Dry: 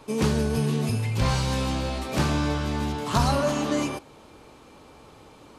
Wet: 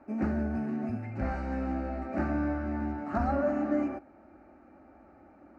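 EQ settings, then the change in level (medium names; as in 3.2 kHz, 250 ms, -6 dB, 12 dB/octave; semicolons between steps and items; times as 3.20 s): high-pass 57 Hz; low-pass 1.4 kHz 12 dB/octave; static phaser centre 680 Hz, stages 8; -1.5 dB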